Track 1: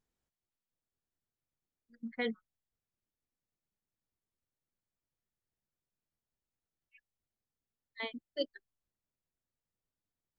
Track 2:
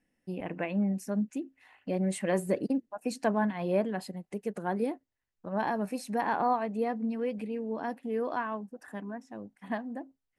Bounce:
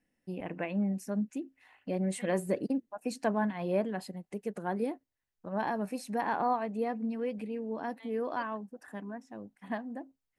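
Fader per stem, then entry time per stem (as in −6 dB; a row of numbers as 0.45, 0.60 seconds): −16.0, −2.0 decibels; 0.00, 0.00 seconds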